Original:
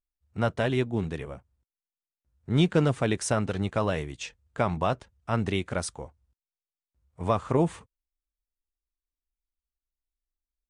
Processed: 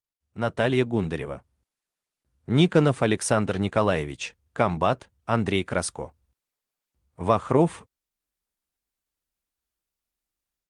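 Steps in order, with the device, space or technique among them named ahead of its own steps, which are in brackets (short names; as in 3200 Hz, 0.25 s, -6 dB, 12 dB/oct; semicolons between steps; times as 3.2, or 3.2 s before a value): video call (HPF 130 Hz 6 dB/oct; AGC gain up to 13 dB; gain -4.5 dB; Opus 32 kbps 48000 Hz)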